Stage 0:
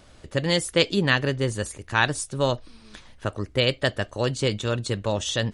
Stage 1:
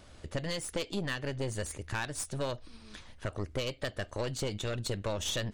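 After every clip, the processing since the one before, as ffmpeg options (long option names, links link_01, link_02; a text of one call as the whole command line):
ffmpeg -i in.wav -af "equalizer=frequency=81:width_type=o:width=0.21:gain=6.5,acompressor=threshold=-25dB:ratio=16,aeval=exprs='(tanh(20*val(0)+0.6)-tanh(0.6))/20':channel_layout=same" out.wav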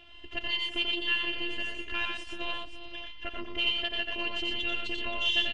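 ffmpeg -i in.wav -af "afftfilt=real='hypot(re,im)*cos(PI*b)':imag='0':win_size=512:overlap=0.75,lowpass=frequency=2900:width_type=q:width=15,aecho=1:1:89|120|349|401|525:0.631|0.531|0.178|0.141|0.299" out.wav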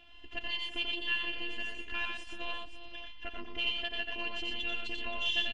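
ffmpeg -i in.wav -af "aecho=1:1:4.1:0.37,volume=-4.5dB" out.wav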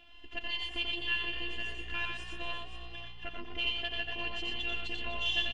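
ffmpeg -i in.wav -filter_complex "[0:a]asplit=5[link_01][link_02][link_03][link_04][link_05];[link_02]adelay=248,afreqshift=59,volume=-13.5dB[link_06];[link_03]adelay=496,afreqshift=118,volume=-21dB[link_07];[link_04]adelay=744,afreqshift=177,volume=-28.6dB[link_08];[link_05]adelay=992,afreqshift=236,volume=-36.1dB[link_09];[link_01][link_06][link_07][link_08][link_09]amix=inputs=5:normalize=0" out.wav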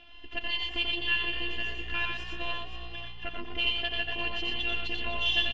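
ffmpeg -i in.wav -af "lowpass=frequency=5800:width=0.5412,lowpass=frequency=5800:width=1.3066,volume=4.5dB" out.wav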